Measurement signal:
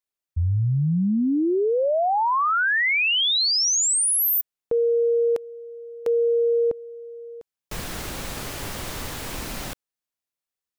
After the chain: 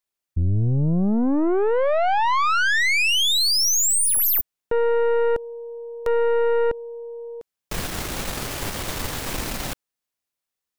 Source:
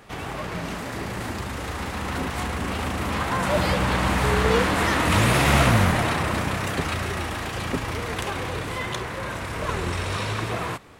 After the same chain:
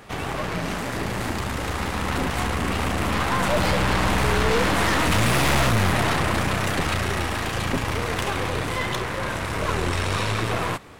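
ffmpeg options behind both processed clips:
-af "aeval=exprs='(tanh(15.8*val(0)+0.6)-tanh(0.6))/15.8':c=same,volume=6.5dB"

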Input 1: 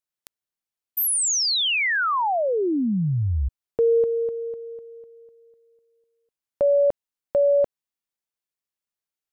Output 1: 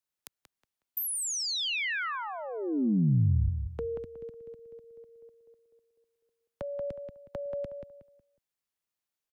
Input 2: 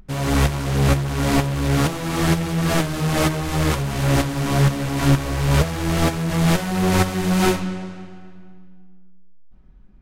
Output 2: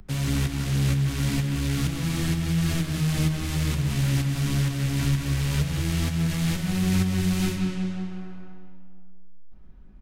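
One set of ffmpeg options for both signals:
-filter_complex "[0:a]acrossover=split=100|260|1800[a][b][c][d];[a]acompressor=threshold=-31dB:ratio=4[e];[b]acompressor=threshold=-25dB:ratio=4[f];[c]acompressor=threshold=-47dB:ratio=4[g];[d]acompressor=threshold=-34dB:ratio=4[h];[e][f][g][h]amix=inputs=4:normalize=0,asplit=2[i][j];[j]adelay=183,lowpass=f=2.9k:p=1,volume=-6dB,asplit=2[k][l];[l]adelay=183,lowpass=f=2.9k:p=1,volume=0.3,asplit=2[m][n];[n]adelay=183,lowpass=f=2.9k:p=1,volume=0.3,asplit=2[o][p];[p]adelay=183,lowpass=f=2.9k:p=1,volume=0.3[q];[i][k][m][o][q]amix=inputs=5:normalize=0"

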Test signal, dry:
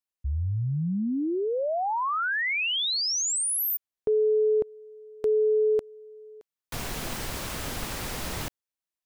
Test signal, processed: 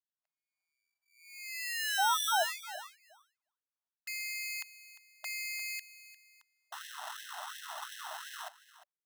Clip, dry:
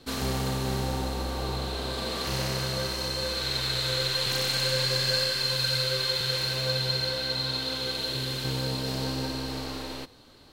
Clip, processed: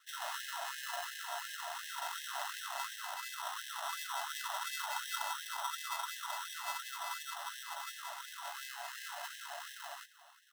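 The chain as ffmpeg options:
-filter_complex "[0:a]highpass=f=380:t=q:w=0.5412,highpass=f=380:t=q:w=1.307,lowpass=f=2.4k:t=q:w=0.5176,lowpass=f=2.4k:t=q:w=0.7071,lowpass=f=2.4k:t=q:w=1.932,afreqshift=-210,acrusher=samples=19:mix=1:aa=0.000001,asplit=2[a][b];[b]aecho=0:1:351:0.158[c];[a][c]amix=inputs=2:normalize=0,afftfilt=real='re*gte(b*sr/1024,590*pow(1600/590,0.5+0.5*sin(2*PI*2.8*pts/sr)))':imag='im*gte(b*sr/1024,590*pow(1600/590,0.5+0.5*sin(2*PI*2.8*pts/sr)))':win_size=1024:overlap=0.75"

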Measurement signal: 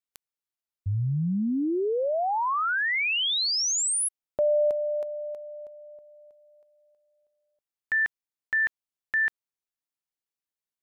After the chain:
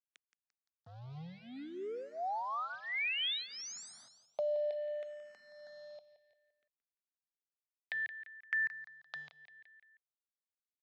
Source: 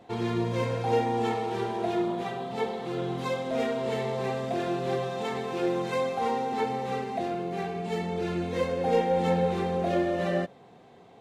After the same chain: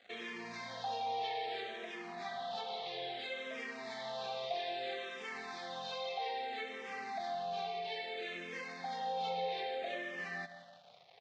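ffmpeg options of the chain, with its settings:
-filter_complex "[0:a]aderivative,bandreject=f=1.4k:w=8.8,acompressor=threshold=-51dB:ratio=3:attack=5.2:release=205:knee=6:detection=peak,asoftclip=type=tanh:threshold=-26.5dB,acrusher=bits=10:mix=0:aa=0.000001,highpass=f=120:w=0.5412,highpass=f=120:w=1.3066,equalizer=f=330:t=q:w=4:g=-10,equalizer=f=700:t=q:w=4:g=5,equalizer=f=1k:t=q:w=4:g=-7,equalizer=f=2.8k:t=q:w=4:g=-6,lowpass=f=4.1k:w=0.5412,lowpass=f=4.1k:w=1.3066,asplit=2[a][b];[b]aecho=0:1:172|344|516|688:0.211|0.0951|0.0428|0.0193[c];[a][c]amix=inputs=2:normalize=0,asplit=2[d][e];[e]afreqshift=-0.61[f];[d][f]amix=inputs=2:normalize=1,volume=16.5dB"

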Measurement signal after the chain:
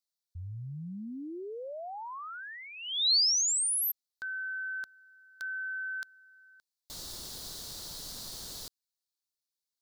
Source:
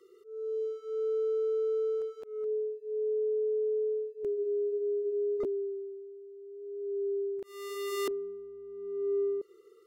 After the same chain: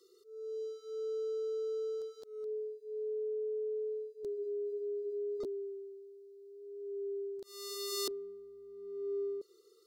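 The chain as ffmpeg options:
-af "highshelf=f=3.2k:t=q:w=3:g=9.5,volume=-6.5dB"

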